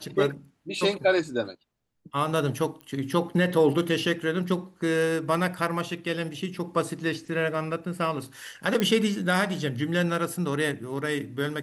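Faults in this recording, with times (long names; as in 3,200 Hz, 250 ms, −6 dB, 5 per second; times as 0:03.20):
0:02.81: click −28 dBFS
0:08.80: click −12 dBFS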